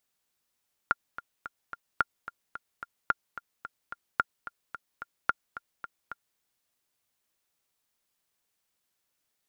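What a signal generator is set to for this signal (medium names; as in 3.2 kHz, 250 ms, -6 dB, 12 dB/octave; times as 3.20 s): metronome 219 bpm, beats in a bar 4, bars 5, 1.4 kHz, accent 15 dB -9.5 dBFS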